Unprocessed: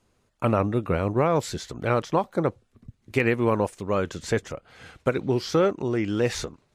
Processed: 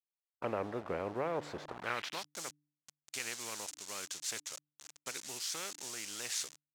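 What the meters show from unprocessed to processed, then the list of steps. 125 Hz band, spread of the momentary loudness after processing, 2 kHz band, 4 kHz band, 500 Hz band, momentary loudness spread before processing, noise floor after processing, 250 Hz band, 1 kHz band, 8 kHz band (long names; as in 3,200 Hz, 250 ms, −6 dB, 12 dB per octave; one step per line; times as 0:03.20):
−24.5 dB, 8 LU, −11.0 dB, −3.5 dB, −17.5 dB, 7 LU, below −85 dBFS, −21.0 dB, −14.0 dB, +2.0 dB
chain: hold until the input has moved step −35.5 dBFS
hum removal 147.7 Hz, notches 2
band-pass filter sweep 520 Hz → 6,700 Hz, 0:01.61–0:02.31
every bin compressed towards the loudest bin 2 to 1
level −4.5 dB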